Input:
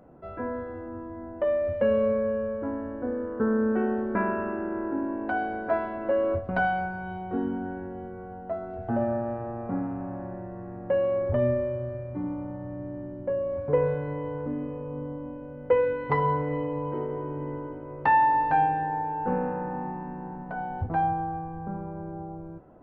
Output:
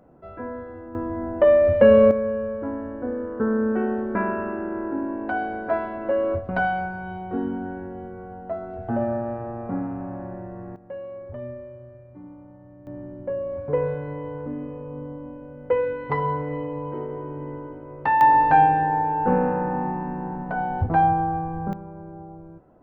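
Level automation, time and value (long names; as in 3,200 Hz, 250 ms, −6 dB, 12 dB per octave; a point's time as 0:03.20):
−1 dB
from 0:00.95 +10 dB
from 0:02.11 +2 dB
from 0:10.76 −11 dB
from 0:12.87 0 dB
from 0:18.21 +7 dB
from 0:21.73 −2.5 dB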